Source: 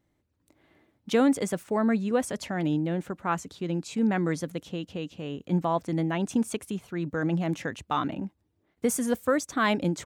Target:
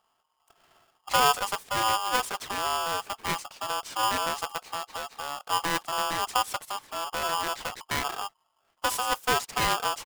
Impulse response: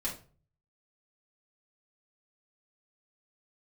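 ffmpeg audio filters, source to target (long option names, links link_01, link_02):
-filter_complex "[0:a]aeval=exprs='clip(val(0),-1,0.0158)':channel_layout=same,asplit=2[link_01][link_02];[link_02]asetrate=22050,aresample=44100,atempo=2,volume=-8dB[link_03];[link_01][link_03]amix=inputs=2:normalize=0,aeval=exprs='val(0)*sgn(sin(2*PI*1000*n/s))':channel_layout=same"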